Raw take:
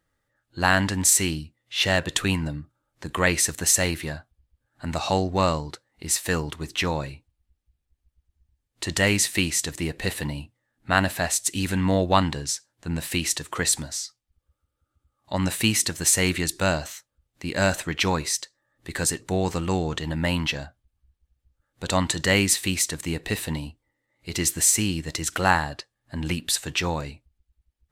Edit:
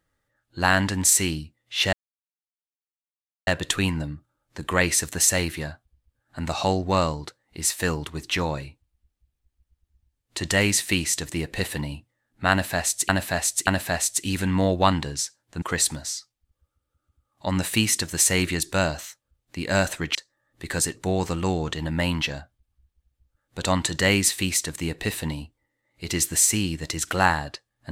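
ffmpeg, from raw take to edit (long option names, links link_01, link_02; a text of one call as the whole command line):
ffmpeg -i in.wav -filter_complex "[0:a]asplit=6[link_01][link_02][link_03][link_04][link_05][link_06];[link_01]atrim=end=1.93,asetpts=PTS-STARTPTS,afade=type=out:start_time=1.926:duration=0.004:curve=hsin,apad=pad_dur=1.54[link_07];[link_02]atrim=start=1.93:end=11.552,asetpts=PTS-STARTPTS,afade=type=in:duration=0.004:curve=hsin[link_08];[link_03]atrim=start=10.968:end=11.552[link_09];[link_04]atrim=start=10.968:end=12.922[link_10];[link_05]atrim=start=13.488:end=18.022[link_11];[link_06]atrim=start=18.398[link_12];[link_07][link_08]concat=n=2:v=0:a=1[link_13];[link_13][link_09]acrossfade=duration=0.004:curve1=hsin:curve2=hsin[link_14];[link_14][link_10]acrossfade=duration=0.004:curve1=hsin:curve2=hsin[link_15];[link_15][link_11]acrossfade=duration=0.004:curve1=hsin:curve2=hsin[link_16];[link_16][link_12]acrossfade=duration=0.004:curve1=hsin:curve2=hsin" out.wav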